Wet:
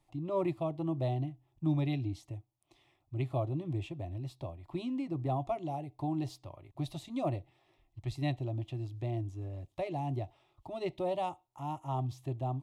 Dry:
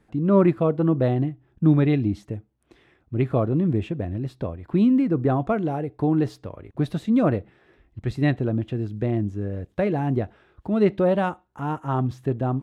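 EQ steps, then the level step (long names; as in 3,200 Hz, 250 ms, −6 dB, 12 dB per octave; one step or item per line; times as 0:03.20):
parametric band 240 Hz −12 dB 2.1 octaves
dynamic equaliser 1,300 Hz, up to −5 dB, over −46 dBFS, Q 1.5
phaser with its sweep stopped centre 310 Hz, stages 8
−2.5 dB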